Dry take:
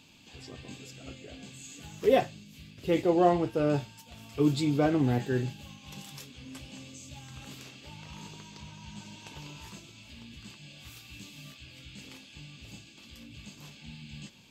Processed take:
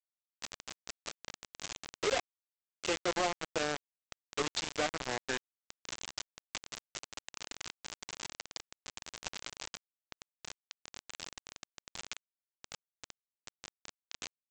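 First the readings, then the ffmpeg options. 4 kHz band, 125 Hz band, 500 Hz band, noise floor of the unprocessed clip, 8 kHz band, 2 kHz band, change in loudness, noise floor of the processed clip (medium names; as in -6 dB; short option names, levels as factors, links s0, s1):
+3.0 dB, -19.5 dB, -9.5 dB, -53 dBFS, +5.5 dB, +2.0 dB, -12.0 dB, under -85 dBFS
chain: -af "highpass=650,acompressor=threshold=0.00562:ratio=5,aresample=16000,acrusher=bits=6:mix=0:aa=0.000001,aresample=44100,volume=3.76"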